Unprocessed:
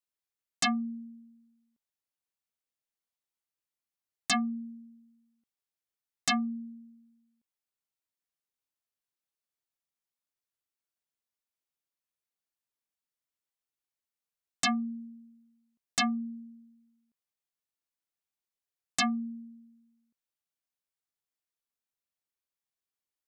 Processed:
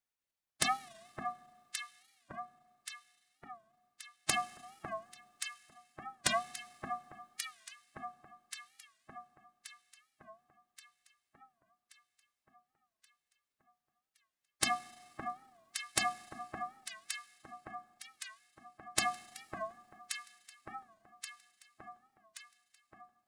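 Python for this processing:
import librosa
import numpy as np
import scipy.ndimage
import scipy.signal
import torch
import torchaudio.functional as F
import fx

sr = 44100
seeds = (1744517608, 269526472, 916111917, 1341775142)

y = fx.low_shelf(x, sr, hz=68.0, db=-8.5)
y = fx.notch(y, sr, hz=1900.0, q=8.8)
y = fx.spec_gate(y, sr, threshold_db=-10, keep='weak')
y = fx.high_shelf(y, sr, hz=5500.0, db=-5.0)
y = fx.hum_notches(y, sr, base_hz=60, count=6)
y = fx.echo_alternate(y, sr, ms=564, hz=1500.0, feedback_pct=73, wet_db=-5)
y = fx.rev_schroeder(y, sr, rt60_s=1.9, comb_ms=33, drr_db=18.0)
y = fx.record_warp(y, sr, rpm=45.0, depth_cents=160.0)
y = F.gain(torch.from_numpy(y), 12.0).numpy()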